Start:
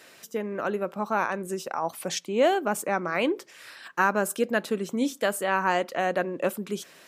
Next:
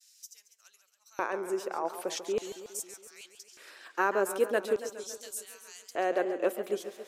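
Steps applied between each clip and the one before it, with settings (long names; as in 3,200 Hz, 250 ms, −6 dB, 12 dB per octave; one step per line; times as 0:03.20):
auto-filter high-pass square 0.42 Hz 380–5,800 Hz
downward expander −53 dBFS
feedback echo with a swinging delay time 138 ms, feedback 64%, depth 147 cents, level −11.5 dB
level −6.5 dB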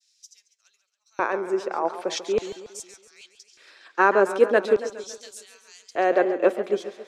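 low-pass filter 4,700 Hz 12 dB per octave
notch filter 2,900 Hz, Q 17
multiband upward and downward expander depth 40%
level +8 dB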